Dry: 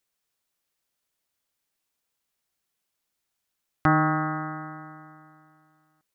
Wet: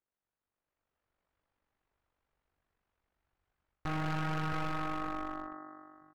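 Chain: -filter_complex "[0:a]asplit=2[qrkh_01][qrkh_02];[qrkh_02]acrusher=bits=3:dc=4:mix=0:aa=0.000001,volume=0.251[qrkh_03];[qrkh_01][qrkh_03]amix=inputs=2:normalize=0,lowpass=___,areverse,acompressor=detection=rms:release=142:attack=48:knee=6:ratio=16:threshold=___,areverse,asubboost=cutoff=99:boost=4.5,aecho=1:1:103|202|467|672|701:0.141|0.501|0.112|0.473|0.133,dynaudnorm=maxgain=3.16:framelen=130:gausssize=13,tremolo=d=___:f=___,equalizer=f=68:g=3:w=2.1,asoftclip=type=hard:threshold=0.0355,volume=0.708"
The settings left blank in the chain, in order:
1500, 0.0251, 0.621, 48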